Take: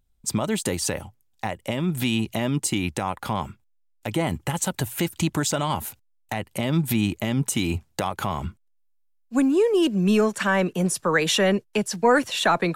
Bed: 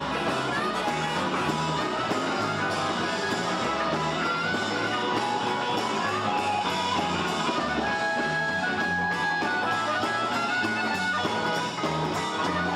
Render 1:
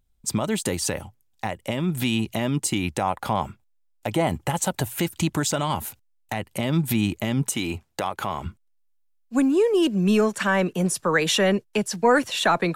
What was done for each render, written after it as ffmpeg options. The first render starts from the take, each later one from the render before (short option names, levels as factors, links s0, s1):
-filter_complex "[0:a]asettb=1/sr,asplit=3[s0][s1][s2];[s0]atrim=end=2.984[s3];[s1]atrim=start=2.98:end=4.87,asetpts=PTS-STARTPTS,afade=t=in:d=0.004:c=qsin,afade=t=out:st=1.886:d=0.004:c=qsin,equalizer=f=690:w=1.5:g=5.5[s4];[s2]atrim=start=4.866[s5];[s3][s4]acrossfade=d=0.004:c1=hsin:c2=qsin[s6];[s6][s5]acrossfade=d=0.004:c1=qsin:c2=hsin,asettb=1/sr,asplit=3[s7][s8][s9];[s7]atrim=end=7.514[s10];[s8]atrim=start=7.51:end=8.46,asetpts=PTS-STARTPTS,afade=t=in:d=0.004:c=qsin,afade=t=out:st=0.946:d=0.004:c=qsin,bass=f=250:g=-7,treble=f=4000:g=-3[s11];[s9]atrim=start=8.456[s12];[s10][s11]acrossfade=d=0.004:c1=hsin:c2=qsin[s13];[s13][s12]acrossfade=d=0.004:c1=qsin:c2=hsin"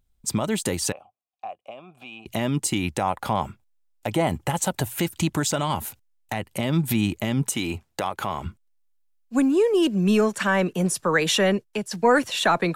-filter_complex "[0:a]asettb=1/sr,asplit=3[s0][s1][s2];[s0]atrim=end=0.924[s3];[s1]atrim=start=0.92:end=2.26,asetpts=PTS-STARTPTS,afade=t=in:d=0.004:c=qsin,afade=t=out:st=1.336:d=0.004:c=qsin,asplit=3[s4][s5][s6];[s4]bandpass=f=730:t=q:w=8,volume=1[s7];[s5]bandpass=f=1090:t=q:w=8,volume=0.501[s8];[s6]bandpass=f=2440:t=q:w=8,volume=0.355[s9];[s7][s8][s9]amix=inputs=3:normalize=0[s10];[s2]atrim=start=2.256[s11];[s3][s10]acrossfade=d=0.004:c1=hsin:c2=qsin[s12];[s12][s11]acrossfade=d=0.004:c1=qsin:c2=hsin,asplit=2[s13][s14];[s13]atrim=end=11.91,asetpts=PTS-STARTPTS,afade=t=out:st=11.46:d=0.45:silence=0.446684[s15];[s14]atrim=start=11.91,asetpts=PTS-STARTPTS,afade=t=in:d=0.004:c=hsin:silence=0.446684[s16];[s15][s16]concat=n=2:v=0:a=1"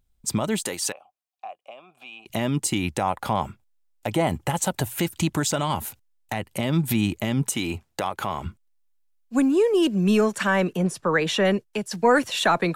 -filter_complex "[0:a]asettb=1/sr,asplit=3[s0][s1][s2];[s0]atrim=end=0.664[s3];[s1]atrim=start=0.66:end=2.3,asetpts=PTS-STARTPTS,afade=t=in:d=0.004:c=qsin,afade=t=out:st=1.636:d=0.004:c=qsin,highpass=f=640:p=1[s4];[s2]atrim=start=2.296[s5];[s3][s4]acrossfade=d=0.004:c1=hsin:c2=qsin[s6];[s6][s5]acrossfade=d=0.004:c1=qsin:c2=hsin,asettb=1/sr,asplit=3[s7][s8][s9];[s7]atrim=end=10.774[s10];[s8]atrim=start=10.77:end=11.45,asetpts=PTS-STARTPTS,afade=t=in:d=0.004:c=qsin,afade=t=out:st=0.676:d=0.004:c=qsin,lowpass=f=2800:p=1[s11];[s9]atrim=start=11.446[s12];[s10][s11]acrossfade=d=0.004:c1=hsin:c2=qsin[s13];[s13][s12]acrossfade=d=0.004:c1=qsin:c2=hsin"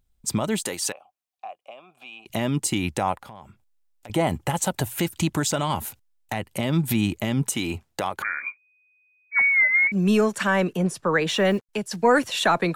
-filter_complex "[0:a]asettb=1/sr,asplit=3[s0][s1][s2];[s0]atrim=end=3.164[s3];[s1]atrim=start=3.16:end=4.1,asetpts=PTS-STARTPTS,afade=t=in:d=0.004:c=qsin,afade=t=out:st=0.936:d=0.004:c=qsin,acompressor=threshold=0.00562:ratio=3:attack=3.2:release=140:knee=1:detection=peak[s4];[s2]atrim=start=4.096[s5];[s3][s4]acrossfade=d=0.004:c1=hsin:c2=qsin[s6];[s6][s5]acrossfade=d=0.004:c1=qsin:c2=hsin,asettb=1/sr,asplit=3[s7][s8][s9];[s7]atrim=end=8.224[s10];[s8]atrim=start=8.22:end=9.92,asetpts=PTS-STARTPTS,afade=t=in:d=0.004:c=qsin,afade=t=out:st=1.696:d=0.004:c=qsin,lowpass=f=2100:t=q:w=0.5098,lowpass=f=2100:t=q:w=0.6013,lowpass=f=2100:t=q:w=0.9,lowpass=f=2100:t=q:w=2.563,afreqshift=-2500[s11];[s9]atrim=start=9.916[s12];[s10][s11]acrossfade=d=0.004:c1=hsin:c2=qsin[s13];[s13][s12]acrossfade=d=0.004:c1=qsin:c2=hsin,asettb=1/sr,asplit=3[s14][s15][s16];[s14]atrim=end=11.294[s17];[s15]atrim=start=11.29:end=11.69,asetpts=PTS-STARTPTS,afade=t=in:d=0.004:c=qsin,afade=t=out:st=0.396:d=0.004:c=qsin,acrusher=bits=7:mix=0:aa=0.5[s18];[s16]atrim=start=11.686[s19];[s17][s18]acrossfade=d=0.004:c1=hsin:c2=qsin[s20];[s20][s19]acrossfade=d=0.004:c1=qsin:c2=hsin"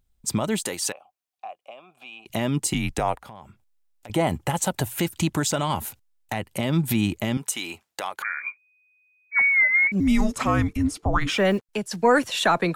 -filter_complex "[0:a]asplit=3[s0][s1][s2];[s0]afade=t=out:st=2.73:d=0.02[s3];[s1]afreqshift=-58,afade=t=in:st=2.73:d=0.02,afade=t=out:st=3.22:d=0.02[s4];[s2]afade=t=in:st=3.22:d=0.02[s5];[s3][s4][s5]amix=inputs=3:normalize=0,asettb=1/sr,asplit=3[s6][s7][s8];[s6]atrim=end=7.374[s9];[s7]atrim=start=7.37:end=8.45,asetpts=PTS-STARTPTS,afade=t=in:d=0.004:c=qsin,afade=t=out:st=1.076:d=0.004:c=qsin,highpass=f=930:p=1[s10];[s8]atrim=start=8.446[s11];[s9][s10]acrossfade=d=0.004:c1=hsin:c2=qsin[s12];[s12][s11]acrossfade=d=0.004:c1=qsin:c2=hsin,asettb=1/sr,asplit=3[s13][s14][s15];[s13]atrim=end=10.004[s16];[s14]atrim=start=10:end=11.38,asetpts=PTS-STARTPTS,afade=t=in:d=0.004:c=qsin,afade=t=out:st=1.376:d=0.004:c=qsin,afreqshift=-450[s17];[s15]atrim=start=11.376[s18];[s16][s17]acrossfade=d=0.004:c1=hsin:c2=qsin[s19];[s19][s18]acrossfade=d=0.004:c1=qsin:c2=hsin"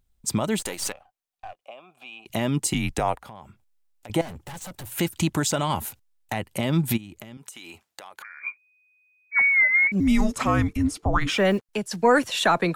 -filter_complex "[0:a]asettb=1/sr,asplit=3[s0][s1][s2];[s0]atrim=end=0.594[s3];[s1]atrim=start=0.59:end=1.61,asetpts=PTS-STARTPTS,afade=t=in:d=0.004:c=qsin,afade=t=out:st=1.016:d=0.004:c=qsin,aeval=exprs='if(lt(val(0),0),0.447*val(0),val(0))':c=same[s4];[s2]atrim=start=1.606[s5];[s3][s4]acrossfade=d=0.004:c1=hsin:c2=qsin[s6];[s6][s5]acrossfade=d=0.004:c1=qsin:c2=hsin,asettb=1/sr,asplit=3[s7][s8][s9];[s7]atrim=end=4.214[s10];[s8]atrim=start=4.21:end=4.92,asetpts=PTS-STARTPTS,afade=t=in:d=0.004:c=qsin,afade=t=out:st=0.706:d=0.004:c=qsin,aeval=exprs='(tanh(63.1*val(0)+0.25)-tanh(0.25))/63.1':c=same[s11];[s9]atrim=start=4.916[s12];[s10][s11]acrossfade=d=0.004:c1=hsin:c2=qsin[s13];[s13][s12]acrossfade=d=0.004:c1=qsin:c2=hsin,asplit=3[s14][s15][s16];[s14]afade=t=out:st=6.96:d=0.02[s17];[s15]acompressor=threshold=0.0141:ratio=12:attack=3.2:release=140:knee=1:detection=peak,afade=t=in:st=6.96:d=0.02,afade=t=out:st=8.42:d=0.02[s18];[s16]afade=t=in:st=8.42:d=0.02[s19];[s17][s18][s19]amix=inputs=3:normalize=0"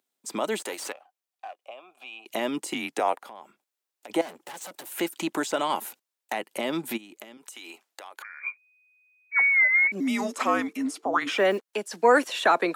-filter_complex "[0:a]acrossover=split=2600[s0][s1];[s1]acompressor=threshold=0.0224:ratio=4:attack=1:release=60[s2];[s0][s2]amix=inputs=2:normalize=0,highpass=f=290:w=0.5412,highpass=f=290:w=1.3066"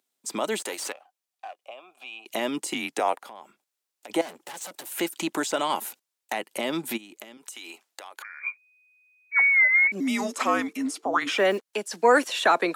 -af "equalizer=f=7100:w=0.4:g=3.5"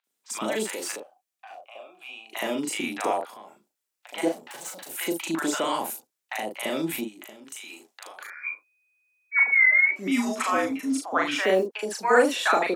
-filter_complex "[0:a]asplit=2[s0][s1];[s1]adelay=37,volume=0.631[s2];[s0][s2]amix=inputs=2:normalize=0,acrossover=split=840|3900[s3][s4][s5];[s5]adelay=40[s6];[s3]adelay=70[s7];[s7][s4][s6]amix=inputs=3:normalize=0"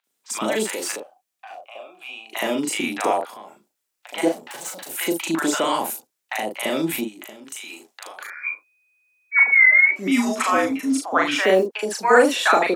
-af "volume=1.78,alimiter=limit=0.794:level=0:latency=1"